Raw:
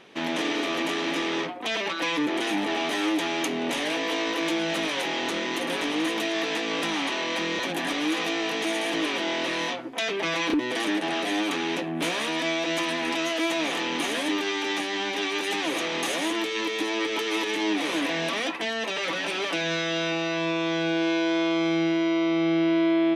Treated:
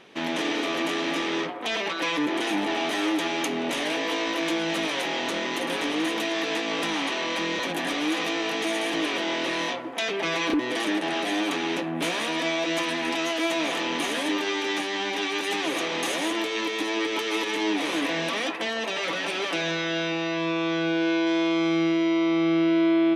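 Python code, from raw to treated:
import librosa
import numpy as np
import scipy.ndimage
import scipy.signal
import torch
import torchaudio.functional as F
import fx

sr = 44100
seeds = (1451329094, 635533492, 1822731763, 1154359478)

y = fx.air_absorb(x, sr, metres=54.0, at=(19.71, 21.27))
y = fx.echo_wet_bandpass(y, sr, ms=158, feedback_pct=58, hz=790.0, wet_db=-9.5)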